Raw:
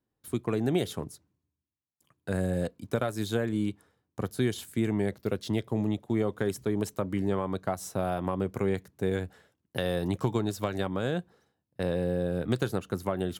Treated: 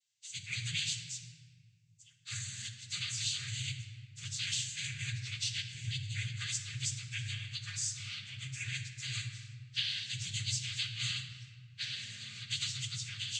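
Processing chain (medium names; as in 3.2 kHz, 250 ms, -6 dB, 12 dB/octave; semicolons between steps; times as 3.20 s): partials quantised in pitch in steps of 2 st; inverse Chebyshev band-stop 190–1100 Hz, stop band 50 dB; compression 2.5:1, threshold -40 dBFS, peak gain reduction 9 dB; noise-vocoded speech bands 16; simulated room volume 2500 m³, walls mixed, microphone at 1.3 m; trim +6.5 dB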